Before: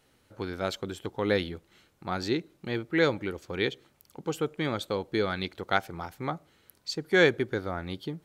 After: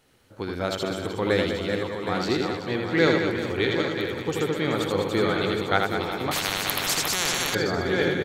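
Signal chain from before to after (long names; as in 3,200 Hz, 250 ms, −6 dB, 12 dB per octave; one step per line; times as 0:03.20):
feedback delay that plays each chunk backwards 382 ms, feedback 65%, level −5.5 dB
reverse bouncing-ball delay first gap 80 ms, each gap 1.5×, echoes 5
0:06.31–0:07.55: every bin compressed towards the loudest bin 10 to 1
level +2.5 dB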